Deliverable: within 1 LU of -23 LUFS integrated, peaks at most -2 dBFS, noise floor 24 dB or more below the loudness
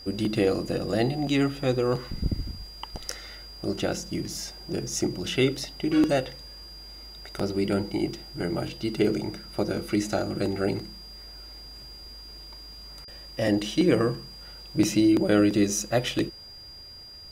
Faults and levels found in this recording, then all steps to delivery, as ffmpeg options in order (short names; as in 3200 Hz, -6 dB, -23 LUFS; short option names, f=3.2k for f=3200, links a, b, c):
steady tone 4800 Hz; tone level -43 dBFS; loudness -26.5 LUFS; peak -8.5 dBFS; loudness target -23.0 LUFS
-> -af "bandreject=f=4.8k:w=30"
-af "volume=3.5dB"